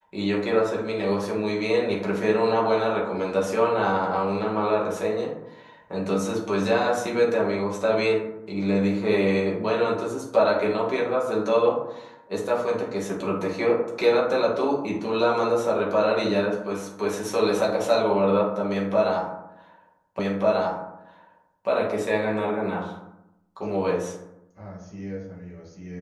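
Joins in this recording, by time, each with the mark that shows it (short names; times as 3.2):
20.19 repeat of the last 1.49 s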